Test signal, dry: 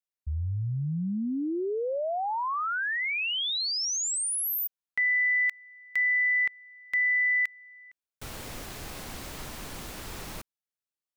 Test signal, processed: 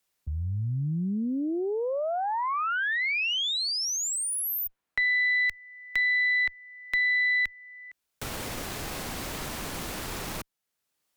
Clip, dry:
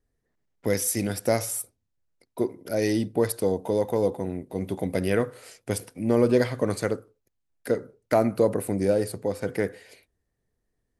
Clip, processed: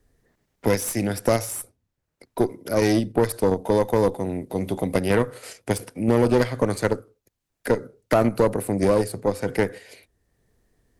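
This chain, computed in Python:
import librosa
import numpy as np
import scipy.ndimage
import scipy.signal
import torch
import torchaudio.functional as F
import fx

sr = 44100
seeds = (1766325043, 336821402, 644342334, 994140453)

p1 = fx.level_steps(x, sr, step_db=24)
p2 = x + (p1 * 10.0 ** (-2.0 / 20.0))
p3 = fx.tube_stage(p2, sr, drive_db=14.0, bias=0.65)
p4 = fx.band_squash(p3, sr, depth_pct=40)
y = p4 * 10.0 ** (3.5 / 20.0)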